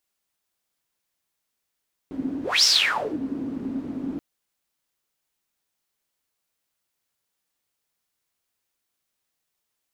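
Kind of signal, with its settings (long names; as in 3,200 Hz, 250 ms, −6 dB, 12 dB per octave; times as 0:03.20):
pass-by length 2.08 s, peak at 0:00.53, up 0.23 s, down 0.58 s, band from 270 Hz, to 5,400 Hz, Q 9.8, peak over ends 13.5 dB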